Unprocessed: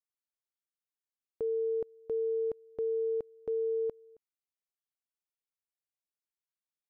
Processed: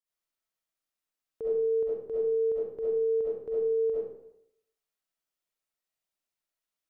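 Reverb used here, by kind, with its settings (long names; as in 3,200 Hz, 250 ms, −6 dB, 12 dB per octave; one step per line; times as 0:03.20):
comb and all-pass reverb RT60 0.73 s, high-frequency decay 0.7×, pre-delay 25 ms, DRR −9.5 dB
level −3.5 dB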